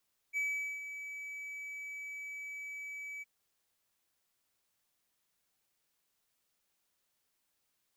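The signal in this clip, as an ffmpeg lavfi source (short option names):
-f lavfi -i "aevalsrc='0.0376*(1-4*abs(mod(2290*t+0.25,1)-0.5))':d=2.913:s=44100,afade=t=in:d=0.041,afade=t=out:st=0.041:d=0.431:silence=0.299,afade=t=out:st=2.89:d=0.023"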